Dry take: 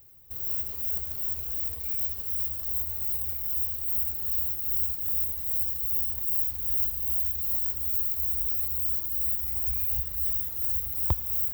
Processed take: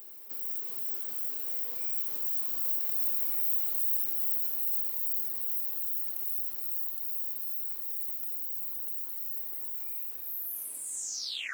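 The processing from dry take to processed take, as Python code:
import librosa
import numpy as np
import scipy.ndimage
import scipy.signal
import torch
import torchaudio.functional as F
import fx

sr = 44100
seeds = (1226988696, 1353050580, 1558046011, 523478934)

y = fx.tape_stop_end(x, sr, length_s=1.5)
y = fx.doppler_pass(y, sr, speed_mps=9, closest_m=8.1, pass_at_s=3.37)
y = scipy.signal.sosfilt(scipy.signal.butter(8, 230.0, 'highpass', fs=sr, output='sos'), y)
y = fx.echo_feedback(y, sr, ms=404, feedback_pct=32, wet_db=-21.0)
y = fx.env_flatten(y, sr, amount_pct=50)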